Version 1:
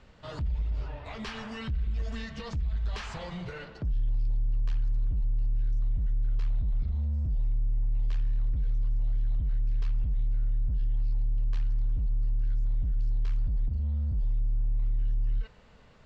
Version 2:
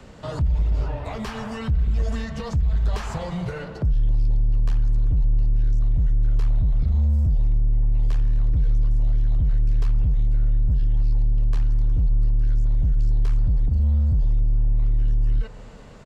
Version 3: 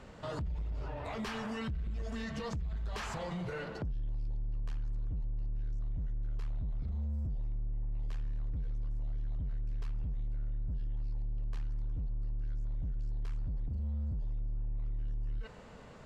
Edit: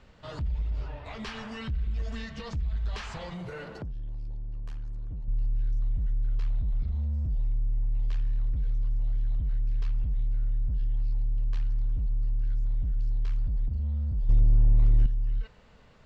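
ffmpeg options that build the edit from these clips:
ffmpeg -i take0.wav -i take1.wav -i take2.wav -filter_complex "[0:a]asplit=3[link_01][link_02][link_03];[link_01]atrim=end=3.342[link_04];[2:a]atrim=start=3.338:end=5.282[link_05];[link_02]atrim=start=5.278:end=14.292[link_06];[1:a]atrim=start=14.288:end=15.062[link_07];[link_03]atrim=start=15.058[link_08];[link_04][link_05]acrossfade=duration=0.004:curve1=hsin:curve2=hsin[link_09];[link_09][link_06]acrossfade=duration=0.004:curve1=hsin:curve2=hsin[link_10];[link_10][link_07]acrossfade=duration=0.004:curve1=hsin:curve2=hsin[link_11];[link_11][link_08]acrossfade=duration=0.004:curve1=hsin:curve2=hsin" out.wav

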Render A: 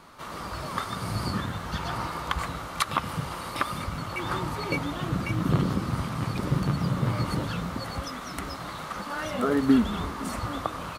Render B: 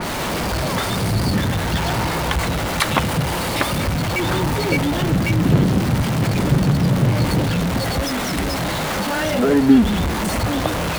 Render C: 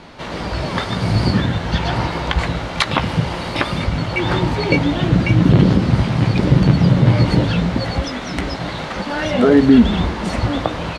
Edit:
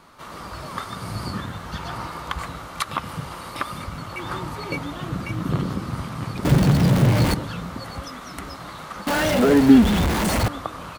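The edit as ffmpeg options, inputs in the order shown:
ffmpeg -i take0.wav -i take1.wav -filter_complex "[1:a]asplit=2[link_01][link_02];[0:a]asplit=3[link_03][link_04][link_05];[link_03]atrim=end=6.452[link_06];[link_01]atrim=start=6.448:end=7.342[link_07];[link_04]atrim=start=7.338:end=9.072[link_08];[link_02]atrim=start=9.068:end=10.482[link_09];[link_05]atrim=start=10.478[link_10];[link_06][link_07]acrossfade=duration=0.004:curve1=hsin:curve2=hsin[link_11];[link_11][link_08]acrossfade=duration=0.004:curve1=hsin:curve2=hsin[link_12];[link_12][link_09]acrossfade=duration=0.004:curve1=hsin:curve2=hsin[link_13];[link_13][link_10]acrossfade=duration=0.004:curve1=hsin:curve2=hsin" out.wav

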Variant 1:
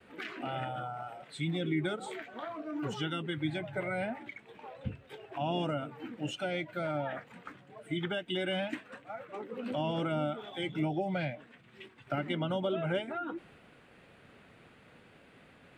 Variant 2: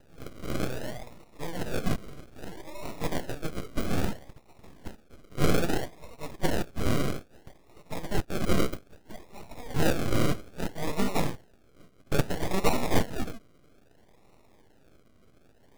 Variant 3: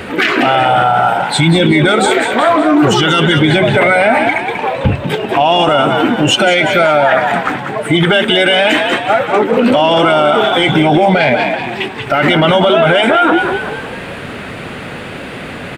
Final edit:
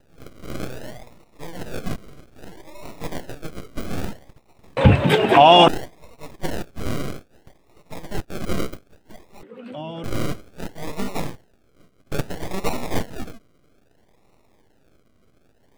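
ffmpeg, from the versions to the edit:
ffmpeg -i take0.wav -i take1.wav -i take2.wav -filter_complex "[1:a]asplit=3[link_01][link_02][link_03];[link_01]atrim=end=4.772[link_04];[2:a]atrim=start=4.768:end=5.682[link_05];[link_02]atrim=start=5.678:end=9.432[link_06];[0:a]atrim=start=9.428:end=10.042[link_07];[link_03]atrim=start=10.038[link_08];[link_04][link_05]acrossfade=duration=0.004:curve1=hsin:curve2=hsin[link_09];[link_09][link_06]acrossfade=duration=0.004:curve1=hsin:curve2=hsin[link_10];[link_10][link_07]acrossfade=duration=0.004:curve1=hsin:curve2=hsin[link_11];[link_11][link_08]acrossfade=duration=0.004:curve1=hsin:curve2=hsin" out.wav

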